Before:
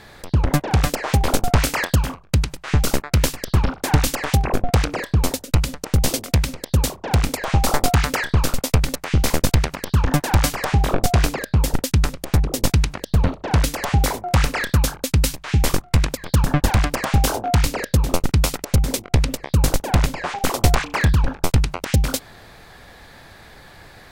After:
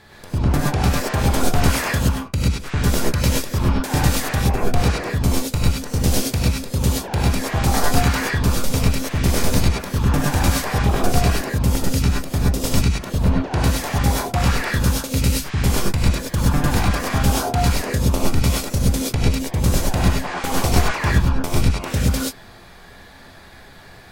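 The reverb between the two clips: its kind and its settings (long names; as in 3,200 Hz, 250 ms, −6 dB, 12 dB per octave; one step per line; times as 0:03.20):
reverb whose tail is shaped and stops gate 150 ms rising, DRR −5 dB
level −6 dB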